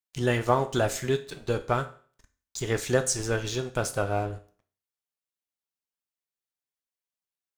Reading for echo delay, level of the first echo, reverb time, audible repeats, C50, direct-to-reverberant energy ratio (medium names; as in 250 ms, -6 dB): no echo, no echo, 0.45 s, no echo, 15.0 dB, 8.5 dB